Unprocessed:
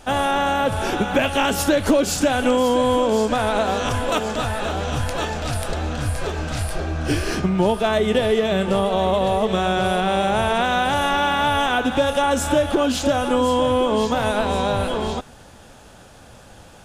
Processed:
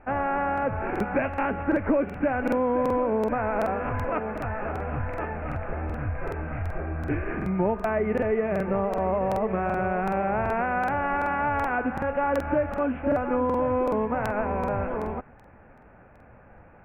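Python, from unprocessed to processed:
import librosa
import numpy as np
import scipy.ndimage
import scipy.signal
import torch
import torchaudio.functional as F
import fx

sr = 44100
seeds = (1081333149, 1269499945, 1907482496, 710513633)

y = scipy.signal.sosfilt(scipy.signal.butter(12, 2400.0, 'lowpass', fs=sr, output='sos'), x)
y = fx.buffer_crackle(y, sr, first_s=0.53, period_s=0.38, block=2048, kind='repeat')
y = y * 10.0 ** (-6.0 / 20.0)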